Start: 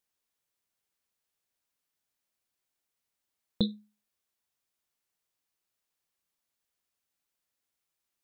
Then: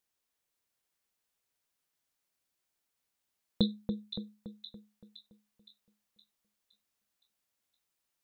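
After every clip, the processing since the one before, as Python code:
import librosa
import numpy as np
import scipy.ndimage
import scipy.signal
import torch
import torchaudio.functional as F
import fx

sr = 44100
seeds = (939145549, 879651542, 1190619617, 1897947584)

y = fx.echo_split(x, sr, split_hz=2400.0, low_ms=284, high_ms=516, feedback_pct=52, wet_db=-6.5)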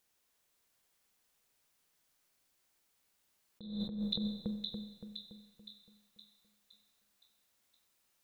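y = fx.rev_schroeder(x, sr, rt60_s=1.1, comb_ms=30, drr_db=7.5)
y = fx.over_compress(y, sr, threshold_db=-40.0, ratio=-1.0)
y = F.gain(torch.from_numpy(y), 1.5).numpy()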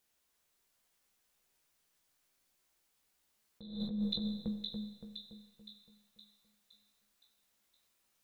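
y = fx.chorus_voices(x, sr, voices=6, hz=0.53, base_ms=16, depth_ms=3.0, mix_pct=35)
y = F.gain(torch.from_numpy(y), 2.0).numpy()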